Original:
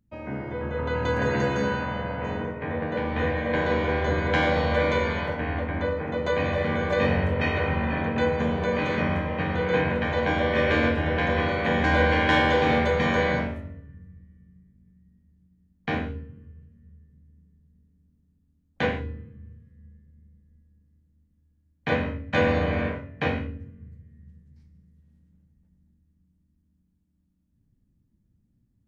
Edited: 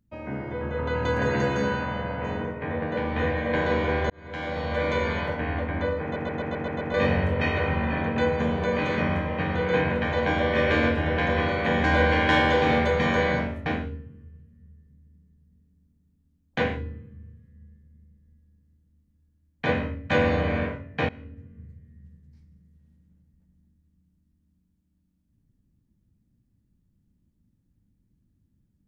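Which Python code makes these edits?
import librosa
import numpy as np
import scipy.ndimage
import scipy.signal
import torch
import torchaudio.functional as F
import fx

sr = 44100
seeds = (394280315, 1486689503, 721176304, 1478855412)

y = fx.edit(x, sr, fx.fade_in_span(start_s=4.1, length_s=1.04),
    fx.stutter_over(start_s=6.03, slice_s=0.13, count=7),
    fx.cut(start_s=13.66, length_s=2.23),
    fx.fade_in_from(start_s=23.32, length_s=0.52, floor_db=-21.0), tone=tone)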